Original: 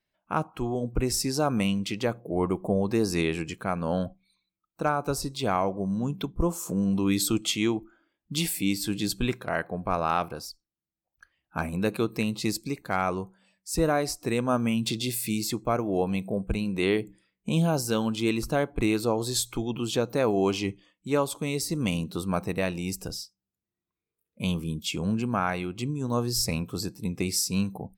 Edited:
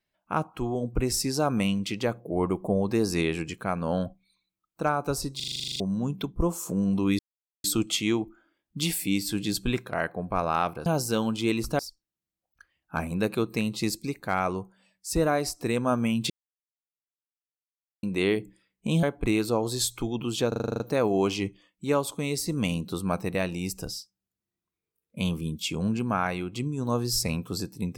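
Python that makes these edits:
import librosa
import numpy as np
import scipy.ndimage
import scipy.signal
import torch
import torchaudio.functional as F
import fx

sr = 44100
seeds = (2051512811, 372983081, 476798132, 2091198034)

y = fx.edit(x, sr, fx.stutter_over(start_s=5.36, slice_s=0.04, count=11),
    fx.insert_silence(at_s=7.19, length_s=0.45),
    fx.silence(start_s=14.92, length_s=1.73),
    fx.move(start_s=17.65, length_s=0.93, to_s=10.41),
    fx.stutter(start_s=20.03, slice_s=0.04, count=9), tone=tone)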